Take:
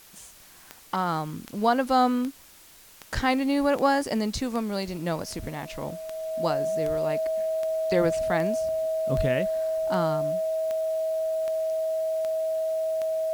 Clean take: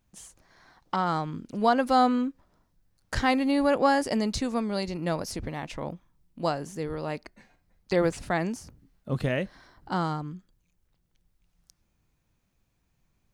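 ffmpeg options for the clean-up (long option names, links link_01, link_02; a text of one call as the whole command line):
ffmpeg -i in.wav -filter_complex "[0:a]adeclick=threshold=4,bandreject=frequency=640:width=30,asplit=3[link_01][link_02][link_03];[link_01]afade=type=out:start_time=9.16:duration=0.02[link_04];[link_02]highpass=frequency=140:width=0.5412,highpass=frequency=140:width=1.3066,afade=type=in:start_time=9.16:duration=0.02,afade=type=out:start_time=9.28:duration=0.02[link_05];[link_03]afade=type=in:start_time=9.28:duration=0.02[link_06];[link_04][link_05][link_06]amix=inputs=3:normalize=0,afftdn=noise_reduction=21:noise_floor=-51" out.wav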